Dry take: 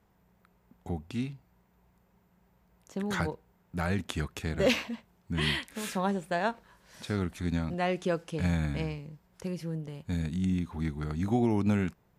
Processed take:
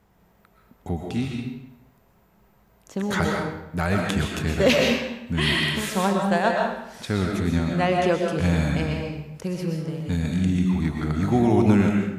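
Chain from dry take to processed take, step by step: algorithmic reverb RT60 0.86 s, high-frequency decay 0.85×, pre-delay 85 ms, DRR 0.5 dB; trim +6.5 dB

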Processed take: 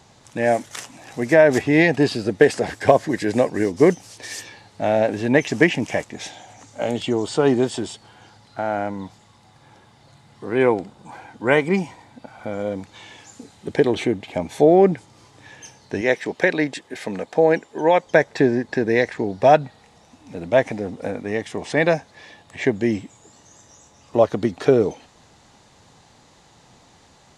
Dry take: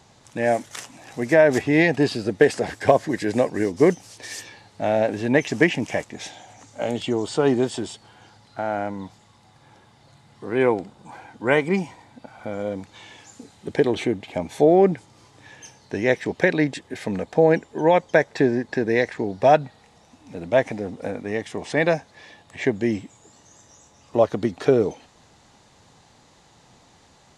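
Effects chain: 16.01–18.07 s: high-pass 310 Hz 6 dB/octave; trim +2 dB

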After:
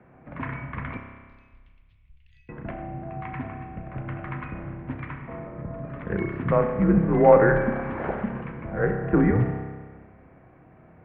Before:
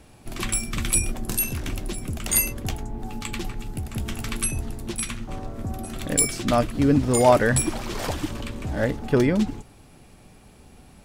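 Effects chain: 0.97–2.49 s: inverse Chebyshev band-stop 400–1100 Hz, stop band 80 dB; mistuned SSB -91 Hz 170–2100 Hz; spring tank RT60 1.5 s, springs 30 ms, chirp 70 ms, DRR 4 dB

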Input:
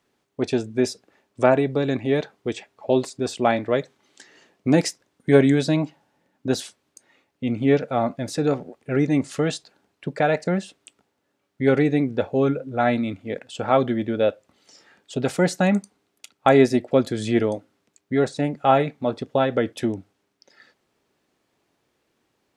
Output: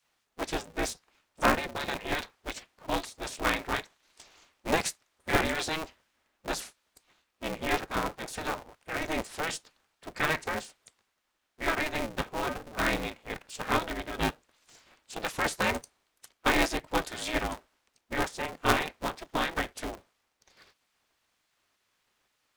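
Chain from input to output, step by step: spectral gate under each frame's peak -10 dB weak; polarity switched at an audio rate 160 Hz

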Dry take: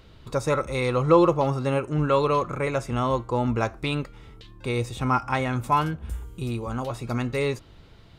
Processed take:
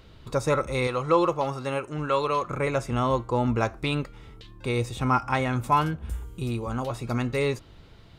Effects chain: 0.87–2.50 s: bass shelf 470 Hz -9 dB

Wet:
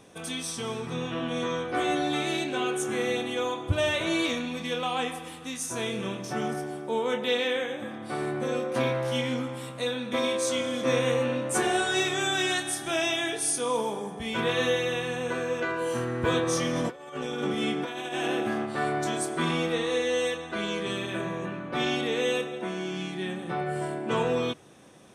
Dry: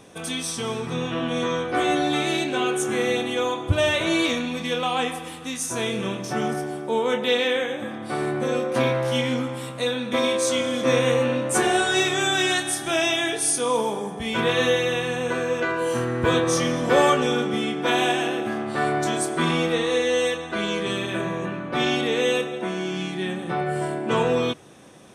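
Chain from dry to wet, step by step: 16.73–18.66 s: compressor with a negative ratio -25 dBFS, ratio -0.5; trim -5 dB

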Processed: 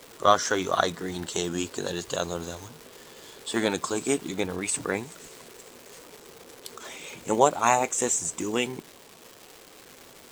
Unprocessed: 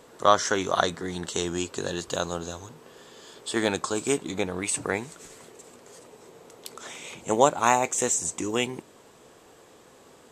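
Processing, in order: coarse spectral quantiser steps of 15 dB; crackle 590 per s -36 dBFS

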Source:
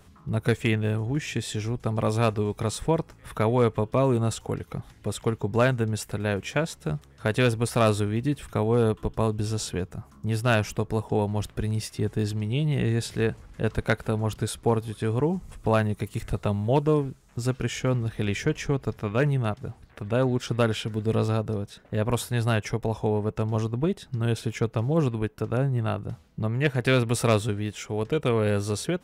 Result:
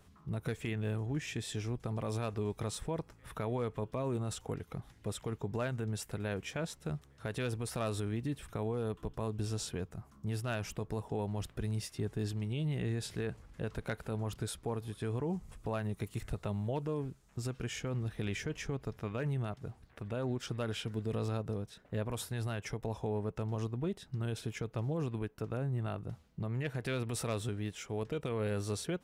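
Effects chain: peak limiter -19 dBFS, peak gain reduction 7 dB; trim -8 dB

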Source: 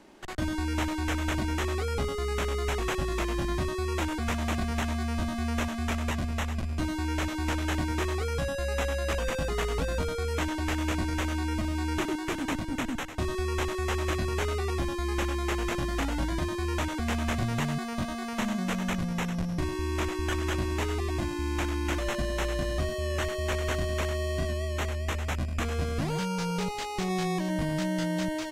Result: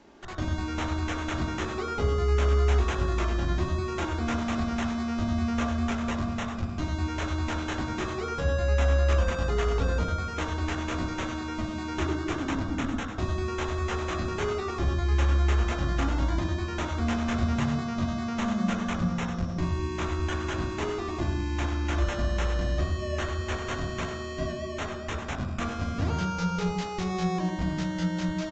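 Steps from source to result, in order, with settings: on a send at -2 dB: reverberation RT60 1.1 s, pre-delay 3 ms; on the sum: resampled via 16 kHz; trim -2 dB

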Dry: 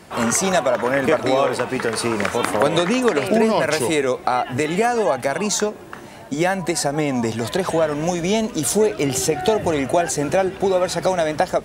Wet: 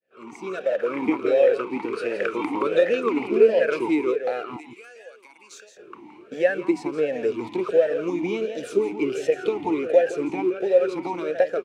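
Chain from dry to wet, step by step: fade-in on the opening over 0.99 s; 4.56–5.77 s: differentiator; in parallel at -10.5 dB: bit crusher 4-bit; on the sum: echo from a far wall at 29 m, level -9 dB; talking filter e-u 1.4 Hz; trim +3.5 dB

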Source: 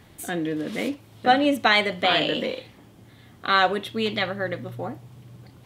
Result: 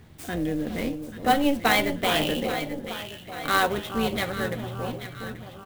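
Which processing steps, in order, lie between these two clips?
AM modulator 280 Hz, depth 35%; bass shelf 190 Hz +8.5 dB; doubling 13 ms -11.5 dB; echo whose repeats swap between lows and highs 417 ms, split 1.2 kHz, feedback 71%, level -8 dB; sampling jitter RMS 0.021 ms; trim -1.5 dB

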